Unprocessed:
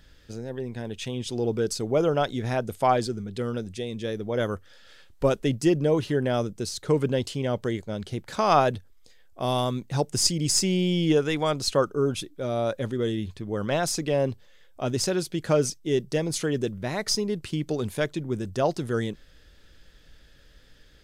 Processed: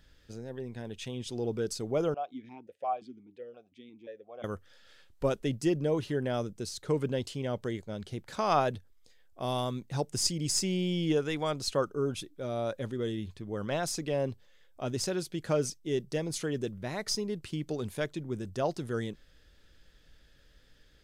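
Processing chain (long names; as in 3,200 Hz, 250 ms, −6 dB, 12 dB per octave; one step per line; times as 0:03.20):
0:02.14–0:04.44: formant filter that steps through the vowels 5.7 Hz
level −6.5 dB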